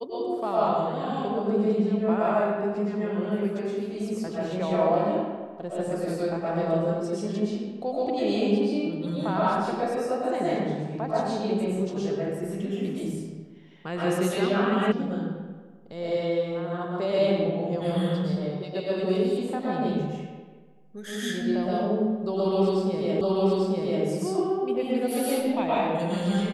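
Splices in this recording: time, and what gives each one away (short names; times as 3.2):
14.92 sound cut off
23.21 repeat of the last 0.84 s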